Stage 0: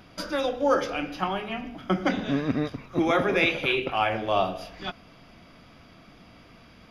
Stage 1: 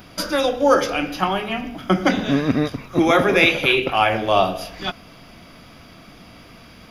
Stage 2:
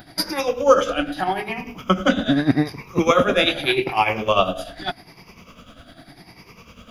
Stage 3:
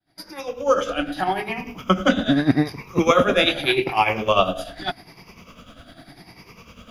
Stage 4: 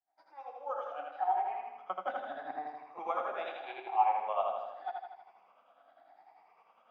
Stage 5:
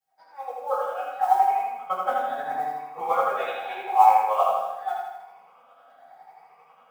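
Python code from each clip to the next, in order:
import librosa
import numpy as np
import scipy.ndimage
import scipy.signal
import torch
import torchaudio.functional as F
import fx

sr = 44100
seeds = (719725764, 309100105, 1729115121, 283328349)

y1 = fx.high_shelf(x, sr, hz=7800.0, db=12.0)
y1 = y1 * librosa.db_to_amplitude(7.0)
y2 = fx.spec_ripple(y1, sr, per_octave=0.8, drift_hz=0.83, depth_db=12)
y2 = y2 * (1.0 - 0.66 / 2.0 + 0.66 / 2.0 * np.cos(2.0 * np.pi * 10.0 * (np.arange(len(y2)) / sr)))
y3 = fx.fade_in_head(y2, sr, length_s=1.21)
y4 = fx.ladder_bandpass(y3, sr, hz=840.0, resonance_pct=75)
y4 = fx.echo_feedback(y4, sr, ms=80, feedback_pct=57, wet_db=-3.5)
y4 = y4 * librosa.db_to_amplitude(-7.0)
y5 = fx.mod_noise(y4, sr, seeds[0], snr_db=29)
y5 = fx.rev_fdn(y5, sr, rt60_s=0.47, lf_ratio=0.85, hf_ratio=0.8, size_ms=37.0, drr_db=-9.5)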